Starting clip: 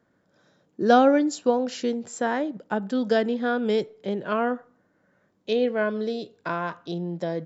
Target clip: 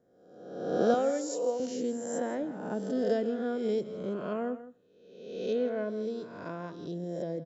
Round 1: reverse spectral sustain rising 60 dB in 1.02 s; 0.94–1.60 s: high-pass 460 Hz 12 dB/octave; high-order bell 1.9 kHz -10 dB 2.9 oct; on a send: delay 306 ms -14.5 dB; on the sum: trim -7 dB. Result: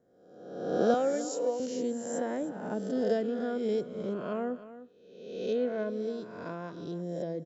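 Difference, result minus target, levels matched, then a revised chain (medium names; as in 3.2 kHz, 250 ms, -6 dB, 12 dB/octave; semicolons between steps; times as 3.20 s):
echo 143 ms late
reverse spectral sustain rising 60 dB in 1.02 s; 0.94–1.60 s: high-pass 460 Hz 12 dB/octave; high-order bell 1.9 kHz -10 dB 2.9 oct; on a send: delay 163 ms -14.5 dB; on the sum: trim -7 dB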